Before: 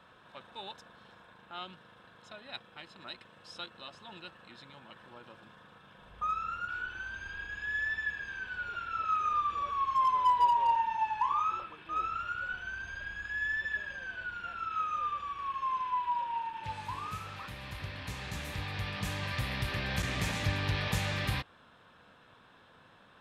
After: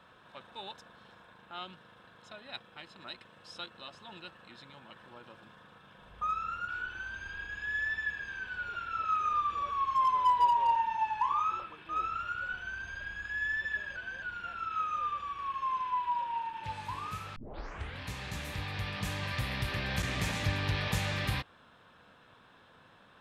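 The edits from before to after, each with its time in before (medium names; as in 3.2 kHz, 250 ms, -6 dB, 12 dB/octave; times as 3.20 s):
13.96–14.22 s: reverse
17.36 s: tape start 0.65 s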